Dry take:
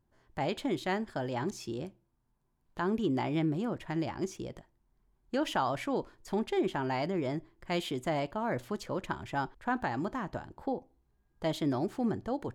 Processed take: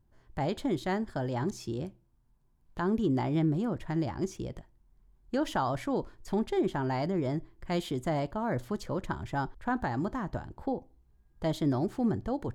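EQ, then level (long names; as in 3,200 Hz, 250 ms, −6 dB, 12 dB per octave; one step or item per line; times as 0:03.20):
low-shelf EQ 140 Hz +10.5 dB
dynamic equaliser 2,600 Hz, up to −7 dB, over −56 dBFS, Q 2.6
0.0 dB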